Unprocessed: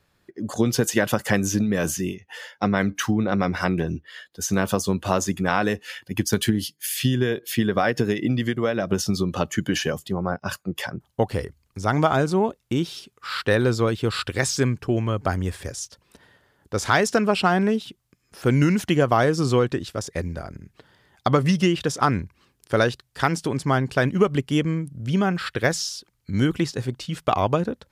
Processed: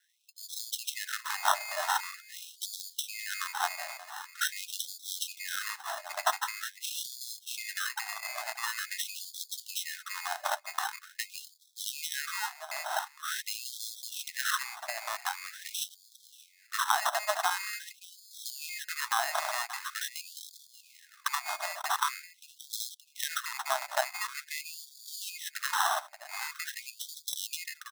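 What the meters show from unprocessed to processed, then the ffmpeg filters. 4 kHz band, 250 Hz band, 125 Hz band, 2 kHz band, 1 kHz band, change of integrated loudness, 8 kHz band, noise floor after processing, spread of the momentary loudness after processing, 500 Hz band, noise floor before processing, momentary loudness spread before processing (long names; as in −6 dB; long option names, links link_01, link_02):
−4.0 dB, below −40 dB, below −40 dB, −7.0 dB, −7.0 dB, −10.5 dB, −4.0 dB, −61 dBFS, 12 LU, −20.0 dB, −69 dBFS, 11 LU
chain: -filter_complex "[0:a]adynamicequalizer=threshold=0.02:dfrequency=180:dqfactor=1.2:tfrequency=180:tqfactor=1.2:attack=5:release=100:ratio=0.375:range=3:mode=boostabove:tftype=bell,lowpass=frequency=6200:width_type=q:width=7.5,acompressor=threshold=-24dB:ratio=4,acrusher=bits=5:mode=log:mix=0:aa=0.000001,asplit=2[link_01][link_02];[link_02]adelay=580,lowpass=frequency=2500:poles=1,volume=-14dB,asplit=2[link_03][link_04];[link_04]adelay=580,lowpass=frequency=2500:poles=1,volume=0.44,asplit=2[link_05][link_06];[link_06]adelay=580,lowpass=frequency=2500:poles=1,volume=0.44,asplit=2[link_07][link_08];[link_08]adelay=580,lowpass=frequency=2500:poles=1,volume=0.44[link_09];[link_01][link_03][link_05][link_07][link_09]amix=inputs=5:normalize=0,acrusher=samples=19:mix=1:aa=0.000001,equalizer=frequency=3000:width_type=o:width=0.26:gain=-9,afftfilt=real='re*gte(b*sr/1024,560*pow(3300/560,0.5+0.5*sin(2*PI*0.45*pts/sr)))':imag='im*gte(b*sr/1024,560*pow(3300/560,0.5+0.5*sin(2*PI*0.45*pts/sr)))':win_size=1024:overlap=0.75,volume=1.5dB"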